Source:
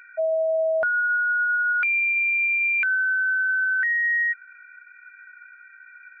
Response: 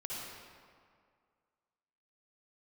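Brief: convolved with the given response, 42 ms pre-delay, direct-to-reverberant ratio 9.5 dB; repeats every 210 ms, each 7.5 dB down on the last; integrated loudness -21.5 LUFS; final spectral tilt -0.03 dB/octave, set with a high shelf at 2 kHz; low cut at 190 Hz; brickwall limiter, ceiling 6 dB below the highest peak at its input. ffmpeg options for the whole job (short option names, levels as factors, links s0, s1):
-filter_complex "[0:a]highpass=190,highshelf=f=2000:g=-6,alimiter=level_in=1.12:limit=0.0631:level=0:latency=1,volume=0.891,aecho=1:1:210|420|630|840|1050:0.422|0.177|0.0744|0.0312|0.0131,asplit=2[s0][s1];[1:a]atrim=start_sample=2205,adelay=42[s2];[s1][s2]afir=irnorm=-1:irlink=0,volume=0.299[s3];[s0][s3]amix=inputs=2:normalize=0,volume=1.33"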